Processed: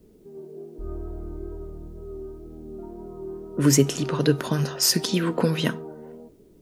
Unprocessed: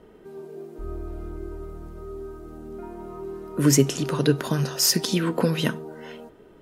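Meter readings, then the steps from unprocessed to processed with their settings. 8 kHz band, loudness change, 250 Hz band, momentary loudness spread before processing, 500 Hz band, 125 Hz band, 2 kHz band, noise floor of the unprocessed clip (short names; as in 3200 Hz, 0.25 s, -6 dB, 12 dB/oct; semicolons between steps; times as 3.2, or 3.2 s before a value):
-0.5 dB, 0.0 dB, 0.0 dB, 20 LU, 0.0 dB, 0.0 dB, 0.0 dB, -51 dBFS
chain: low-pass opened by the level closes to 300 Hz, open at -19 dBFS; wow and flutter 28 cents; requantised 12-bit, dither triangular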